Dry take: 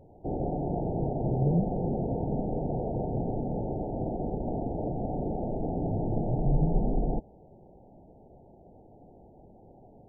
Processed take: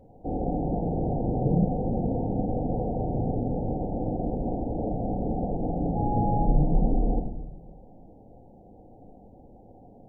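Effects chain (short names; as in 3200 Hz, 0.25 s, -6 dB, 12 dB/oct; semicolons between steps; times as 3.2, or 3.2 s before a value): 5.95–6.44 whine 830 Hz -32 dBFS; reverb RT60 0.75 s, pre-delay 4 ms, DRR 3 dB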